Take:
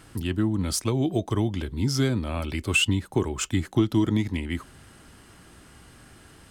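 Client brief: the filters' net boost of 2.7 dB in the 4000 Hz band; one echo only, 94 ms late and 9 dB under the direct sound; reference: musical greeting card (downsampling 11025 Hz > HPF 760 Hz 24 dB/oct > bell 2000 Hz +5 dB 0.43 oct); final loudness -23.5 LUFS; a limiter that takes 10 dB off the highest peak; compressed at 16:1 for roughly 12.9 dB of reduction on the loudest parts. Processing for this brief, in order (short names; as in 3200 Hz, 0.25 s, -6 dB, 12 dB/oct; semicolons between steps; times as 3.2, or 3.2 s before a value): bell 4000 Hz +3.5 dB; compressor 16:1, threshold -29 dBFS; limiter -28.5 dBFS; echo 94 ms -9 dB; downsampling 11025 Hz; HPF 760 Hz 24 dB/oct; bell 2000 Hz +5 dB 0.43 oct; gain +21.5 dB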